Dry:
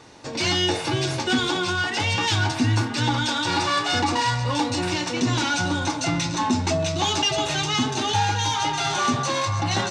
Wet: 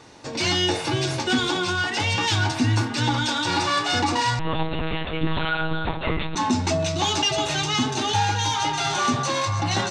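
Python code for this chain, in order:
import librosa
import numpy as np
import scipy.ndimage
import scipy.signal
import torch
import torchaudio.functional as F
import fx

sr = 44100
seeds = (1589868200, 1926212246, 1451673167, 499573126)

y = fx.lpc_monotone(x, sr, seeds[0], pitch_hz=160.0, order=10, at=(4.39, 6.36))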